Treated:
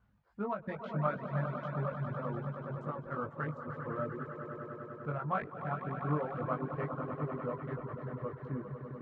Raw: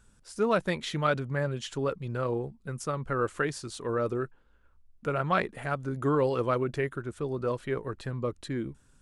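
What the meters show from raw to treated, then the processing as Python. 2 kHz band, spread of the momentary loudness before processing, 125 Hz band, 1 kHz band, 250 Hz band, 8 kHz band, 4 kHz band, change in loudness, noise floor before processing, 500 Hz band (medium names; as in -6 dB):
-9.5 dB, 8 LU, -3.5 dB, -5.0 dB, -6.0 dB, under -35 dB, under -20 dB, -7.0 dB, -62 dBFS, -9.5 dB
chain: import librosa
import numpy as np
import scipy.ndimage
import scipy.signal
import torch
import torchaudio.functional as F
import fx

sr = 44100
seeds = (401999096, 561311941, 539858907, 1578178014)

y = fx.wiener(x, sr, points=15)
y = scipy.signal.sosfilt(scipy.signal.butter(2, 77.0, 'highpass', fs=sr, output='sos'), y)
y = fx.dmg_noise_colour(y, sr, seeds[0], colour='white', level_db=-66.0)
y = fx.peak_eq(y, sr, hz=390.0, db=-11.5, octaves=0.96)
y = fx.doubler(y, sr, ms=20.0, db=-3.5)
y = fx.echo_swell(y, sr, ms=99, loudest=5, wet_db=-9.5)
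y = fx.dereverb_blind(y, sr, rt60_s=0.84)
y = scipy.signal.sosfilt(scipy.signal.butter(2, 1200.0, 'lowpass', fs=sr, output='sos'), y)
y = fx.end_taper(y, sr, db_per_s=220.0)
y = y * 10.0 ** (-3.5 / 20.0)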